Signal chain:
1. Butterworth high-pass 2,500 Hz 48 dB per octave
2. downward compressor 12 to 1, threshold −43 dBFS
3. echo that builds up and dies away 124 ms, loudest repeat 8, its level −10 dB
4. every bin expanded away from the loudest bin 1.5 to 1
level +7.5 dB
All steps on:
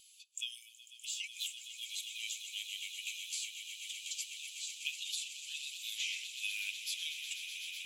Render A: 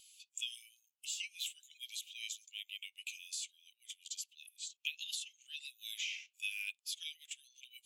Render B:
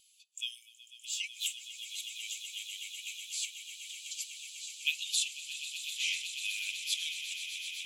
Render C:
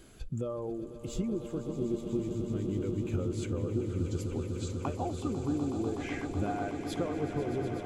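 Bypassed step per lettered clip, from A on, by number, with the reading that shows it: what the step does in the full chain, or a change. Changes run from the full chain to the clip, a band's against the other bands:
3, change in momentary loudness spread +5 LU
2, average gain reduction 2.0 dB
1, change in crest factor −8.0 dB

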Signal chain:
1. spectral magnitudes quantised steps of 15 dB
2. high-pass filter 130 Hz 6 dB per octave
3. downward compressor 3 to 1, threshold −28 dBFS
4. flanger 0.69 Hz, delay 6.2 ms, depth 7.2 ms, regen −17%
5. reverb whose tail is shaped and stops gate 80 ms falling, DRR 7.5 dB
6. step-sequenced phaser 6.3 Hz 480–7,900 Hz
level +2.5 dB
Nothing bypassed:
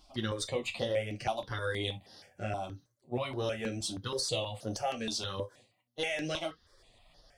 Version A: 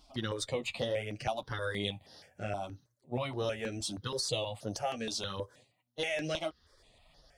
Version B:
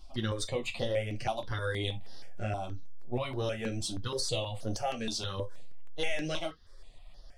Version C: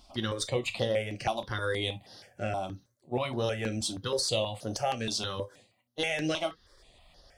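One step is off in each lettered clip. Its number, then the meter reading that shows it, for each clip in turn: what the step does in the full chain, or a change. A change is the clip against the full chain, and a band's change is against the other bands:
5, change in crest factor +1.5 dB
2, 125 Hz band +3.5 dB
4, change in integrated loudness +3.5 LU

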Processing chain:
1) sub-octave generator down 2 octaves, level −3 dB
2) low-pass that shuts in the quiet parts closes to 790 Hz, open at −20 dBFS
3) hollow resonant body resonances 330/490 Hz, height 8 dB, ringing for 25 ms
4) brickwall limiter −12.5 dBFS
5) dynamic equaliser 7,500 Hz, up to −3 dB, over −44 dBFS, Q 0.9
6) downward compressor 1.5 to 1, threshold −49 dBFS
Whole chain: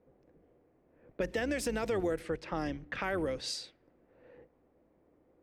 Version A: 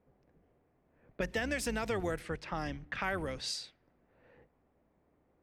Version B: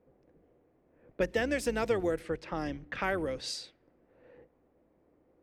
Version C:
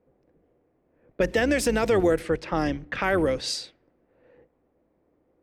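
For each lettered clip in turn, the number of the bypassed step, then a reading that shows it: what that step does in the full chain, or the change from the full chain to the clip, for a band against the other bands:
3, 500 Hz band −4.0 dB
4, change in crest factor +2.0 dB
6, average gain reduction 9.0 dB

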